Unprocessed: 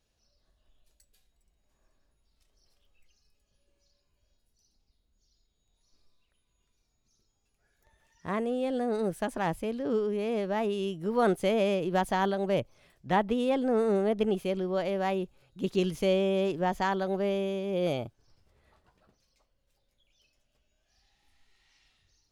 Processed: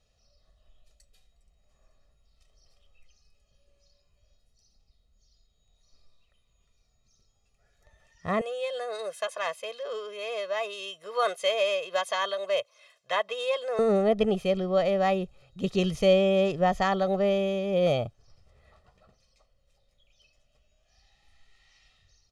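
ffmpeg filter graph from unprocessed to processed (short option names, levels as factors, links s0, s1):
-filter_complex "[0:a]asettb=1/sr,asplit=3[s0][s1][s2];[s0]atrim=end=8.414[s3];[s1]atrim=start=8.41:end=13.79,asetpts=PTS-STARTPTS,afade=t=in:d=0.004:c=qsin,afade=t=out:st=5.376:d=0.004:c=qsin,highpass=970,aecho=1:1:1.9:0.85,atrim=end_sample=237258[s4];[s2]atrim=start=13.786[s5];[s3][s4]acrossfade=d=0.004:c1=hsin:c2=qsin[s6];[s6][s5]acrossfade=d=0.004:c1=qsin:c2=hsin,lowpass=8200,equalizer=f=1600:w=7.4:g=-4.5,aecho=1:1:1.6:0.58,volume=1.5"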